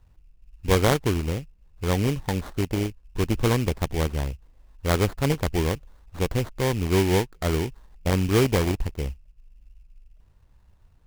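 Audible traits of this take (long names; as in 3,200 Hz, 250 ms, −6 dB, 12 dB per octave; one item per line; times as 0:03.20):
aliases and images of a low sample rate 2,700 Hz, jitter 20%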